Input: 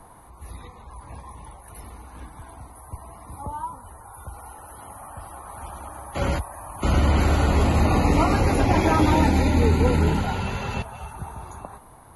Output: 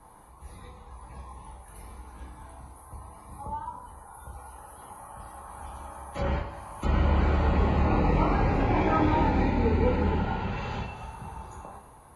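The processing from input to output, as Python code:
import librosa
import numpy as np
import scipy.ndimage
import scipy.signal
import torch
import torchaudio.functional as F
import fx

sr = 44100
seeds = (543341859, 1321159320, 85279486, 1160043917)

y = fx.vibrato(x, sr, rate_hz=1.9, depth_cents=8.5)
y = fx.rev_double_slope(y, sr, seeds[0], early_s=0.47, late_s=2.8, knee_db=-19, drr_db=-2.0)
y = fx.env_lowpass_down(y, sr, base_hz=2700.0, full_db=-17.0)
y = y * 10.0 ** (-8.5 / 20.0)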